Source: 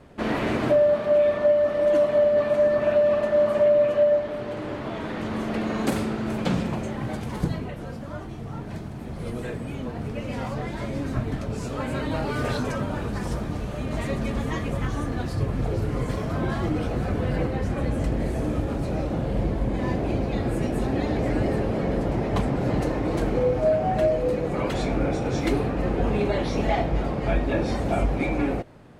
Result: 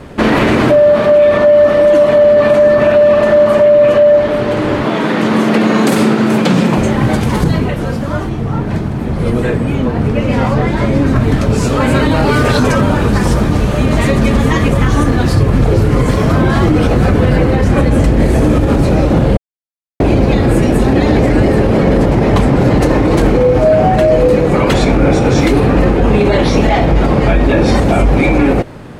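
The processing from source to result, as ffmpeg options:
-filter_complex "[0:a]asettb=1/sr,asplit=3[s0][s1][s2];[s0]atrim=end=4.854[s3];[s1]atrim=start=4.85:end=6.78,asetpts=PTS-STARTPTS,afade=t=in:d=0.004:c=qsin,afade=t=out:st=1.926:d=0.004:c=qsin,highpass=f=140:w=0.5412,highpass=f=140:w=1.3066[s4];[s2]atrim=start=6.776[s5];[s3][s4]acrossfade=d=0.004:c1=hsin:c2=qsin[s6];[s6][s5]acrossfade=d=0.004:c1=qsin:c2=hsin,asettb=1/sr,asplit=3[s7][s8][s9];[s7]atrim=end=8.294[s10];[s8]atrim=start=8.29:end=11.16,asetpts=PTS-STARTPTS,afade=t=in:d=0.004:c=qsin,afade=t=out:st=2.866:d=0.004:c=qsin,highshelf=f=3600:g=-8[s11];[s9]atrim=start=11.156[s12];[s10][s11]acrossfade=d=0.004:c1=hsin:c2=qsin[s13];[s13][s12]acrossfade=d=0.004:c1=qsin:c2=hsin,asplit=3[s14][s15][s16];[s14]atrim=end=19.37,asetpts=PTS-STARTPTS,afade=t=out:st=19.366:d=0.004:c=hsin[s17];[s15]atrim=start=19.37:end=20,asetpts=PTS-STARTPTS,volume=0[s18];[s16]atrim=start=20,asetpts=PTS-STARTPTS,afade=t=in:d=0.004:c=hsin[s19];[s17][s18][s19]concat=n=3:v=0:a=1,equalizer=f=680:w=4.3:g=-3.5,alimiter=level_in=8.91:limit=0.891:release=50:level=0:latency=1,volume=0.891"

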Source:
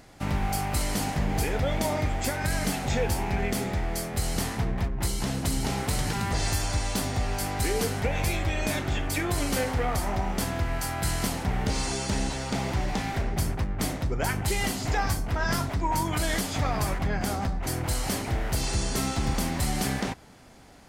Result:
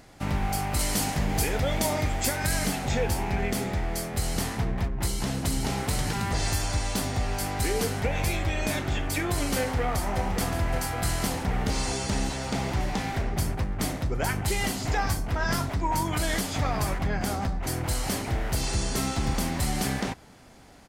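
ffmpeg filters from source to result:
-filter_complex "[0:a]asettb=1/sr,asplit=3[s0][s1][s2];[s0]atrim=end=0.794[s3];[s1]atrim=start=0.79:end=2.67,asetpts=PTS-STARTPTS,afade=t=in:d=0.004:c=qsin,afade=t=out:st=1.876:d=0.004:c=qsin,highshelf=f=3700:g=6.5[s4];[s2]atrim=start=2.666[s5];[s3][s4]acrossfade=d=0.004:c1=hsin:c2=qsin[s6];[s6][s5]acrossfade=d=0.004:c1=qsin:c2=hsin,asplit=2[s7][s8];[s8]afade=t=in:st=9.58:d=0.01,afade=t=out:st=10.26:d=0.01,aecho=0:1:570|1140|1710|2280|2850|3420|3990|4560|5130|5700|6270|6840:0.398107|0.29858|0.223935|0.167951|0.125964|0.0944727|0.0708545|0.0531409|0.0398557|0.0298918|0.0224188|0.0168141[s9];[s7][s9]amix=inputs=2:normalize=0"

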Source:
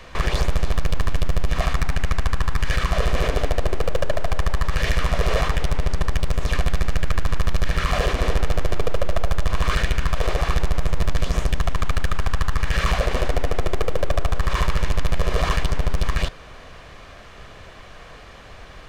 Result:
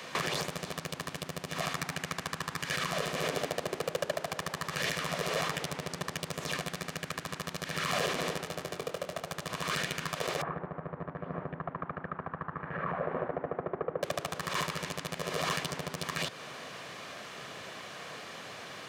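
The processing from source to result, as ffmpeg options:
-filter_complex "[0:a]asettb=1/sr,asplit=3[s0][s1][s2];[s0]atrim=end=8.384[s3];[s1]atrim=start=8.38:end=9.24,asetpts=PTS-STARTPTS,afade=t=in:d=0.004:c=qsin,afade=t=out:st=0.856:d=0.004:c=qsin,asplit=2[s4][s5];[s5]adelay=23,volume=0.376[s6];[s4][s6]amix=inputs=2:normalize=0,atrim=end_sample=37926[s7];[s2]atrim=start=9.236[s8];[s3][s7]acrossfade=d=0.004:c1=hsin:c2=qsin[s9];[s9][s8]acrossfade=d=0.004:c1=qsin:c2=hsin,asettb=1/sr,asplit=3[s10][s11][s12];[s10]atrim=end=10.424[s13];[s11]atrim=start=10.42:end=14.03,asetpts=PTS-STARTPTS,afade=t=in:d=0.004:c=qsin,afade=t=out:st=3.606:d=0.004:c=qsin,lowpass=f=1500:w=0.5412,lowpass=f=1500:w=1.3066[s14];[s12]atrim=start=14.026[s15];[s13][s14]acrossfade=d=0.004:c1=hsin:c2=qsin[s16];[s16][s15]acrossfade=d=0.004:c1=qsin:c2=hsin,acompressor=threshold=0.0708:ratio=6,highpass=f=140:w=0.5412,highpass=f=140:w=1.3066,highshelf=f=3700:g=7.5,volume=0.891"

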